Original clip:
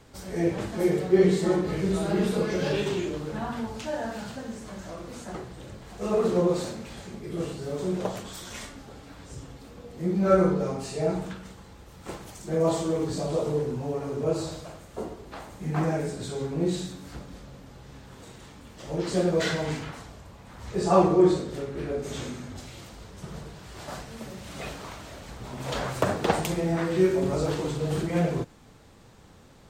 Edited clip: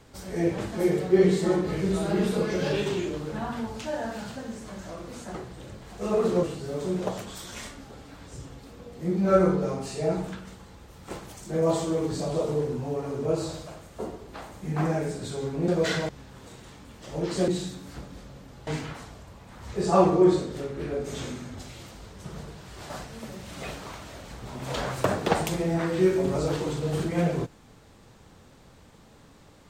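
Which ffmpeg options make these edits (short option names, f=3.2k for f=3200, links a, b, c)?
-filter_complex "[0:a]asplit=6[a][b][c][d][e][f];[a]atrim=end=6.432[g];[b]atrim=start=7.408:end=16.662[h];[c]atrim=start=19.238:end=19.652[i];[d]atrim=start=17.848:end=19.242[j];[e]atrim=start=16.658:end=17.852[k];[f]atrim=start=19.648[l];[g][h]acrossfade=d=0.004:c1=hsin:c2=hsin[m];[m][i]acrossfade=d=0.004:c1=hsin:c2=hsin[n];[n][j]acrossfade=d=0.004:c1=hsin:c2=hsin[o];[o][k]acrossfade=d=0.004:c1=hsin:c2=hsin[p];[p][l]acrossfade=d=0.004:c1=hsin:c2=hsin"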